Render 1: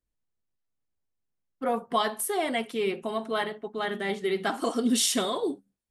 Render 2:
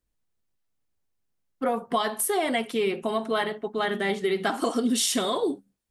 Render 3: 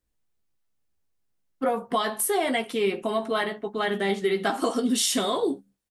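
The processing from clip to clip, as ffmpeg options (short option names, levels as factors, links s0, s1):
-af "acompressor=threshold=0.0501:ratio=6,volume=1.78"
-filter_complex "[0:a]asplit=2[s0][s1];[s1]adelay=15,volume=0.398[s2];[s0][s2]amix=inputs=2:normalize=0"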